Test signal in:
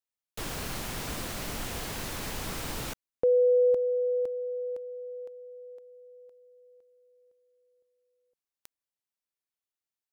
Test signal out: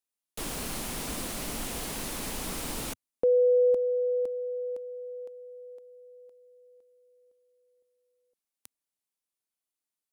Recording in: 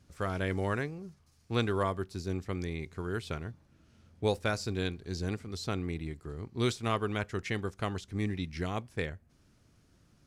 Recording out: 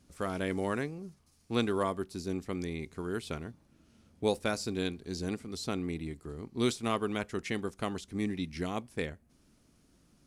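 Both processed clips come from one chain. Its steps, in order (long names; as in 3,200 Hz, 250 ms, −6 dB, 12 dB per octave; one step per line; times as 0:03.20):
graphic EQ with 15 bands 100 Hz −9 dB, 250 Hz +4 dB, 1,600 Hz −3 dB, 10,000 Hz +6 dB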